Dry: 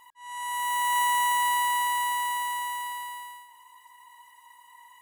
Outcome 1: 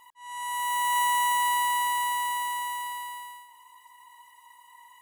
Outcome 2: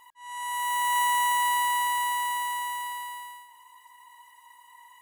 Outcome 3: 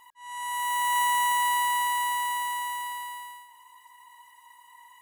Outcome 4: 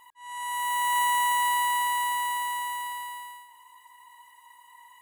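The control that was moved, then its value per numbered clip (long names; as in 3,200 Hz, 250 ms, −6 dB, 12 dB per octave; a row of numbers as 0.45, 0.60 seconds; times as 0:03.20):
notch filter, centre frequency: 1,600, 200, 530, 5,500 Hertz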